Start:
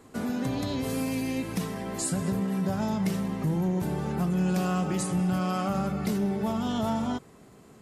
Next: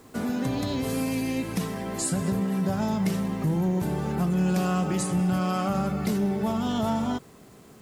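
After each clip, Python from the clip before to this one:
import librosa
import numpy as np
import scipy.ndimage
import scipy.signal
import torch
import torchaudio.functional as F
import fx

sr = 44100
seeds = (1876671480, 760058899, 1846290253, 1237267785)

y = fx.quant_dither(x, sr, seeds[0], bits=10, dither='none')
y = y * librosa.db_to_amplitude(2.0)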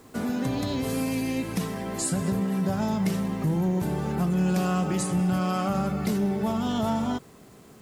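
y = x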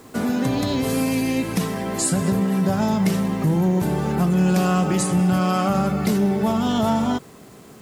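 y = fx.low_shelf(x, sr, hz=64.0, db=-6.5)
y = y * librosa.db_to_amplitude(6.5)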